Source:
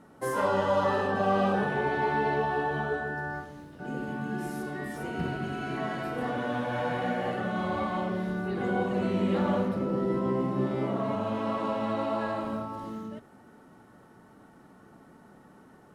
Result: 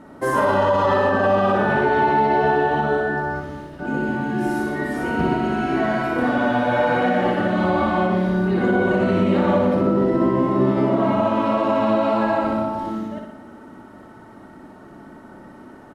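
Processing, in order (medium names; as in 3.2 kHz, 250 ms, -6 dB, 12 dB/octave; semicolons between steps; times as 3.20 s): 10.17–11.05 s: median filter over 3 samples; treble shelf 4.7 kHz -9 dB; comb 3.2 ms, depth 34%; on a send: flutter echo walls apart 10.3 m, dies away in 0.79 s; on the sum: loudness maximiser +18.5 dB; trim -8.5 dB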